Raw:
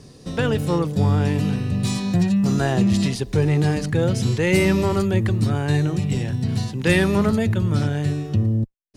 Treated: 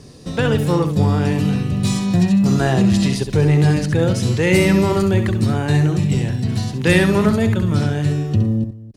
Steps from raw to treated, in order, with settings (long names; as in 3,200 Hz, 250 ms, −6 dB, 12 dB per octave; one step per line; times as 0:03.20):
multi-tap delay 67/271 ms −8.5/−19 dB
level +3 dB